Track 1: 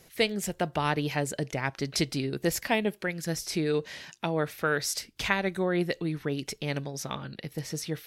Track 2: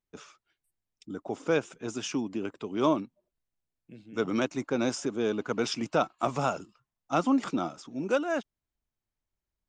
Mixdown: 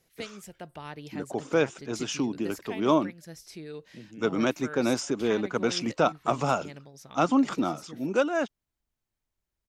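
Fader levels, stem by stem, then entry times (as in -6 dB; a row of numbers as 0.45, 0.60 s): -13.5, +2.5 dB; 0.00, 0.05 s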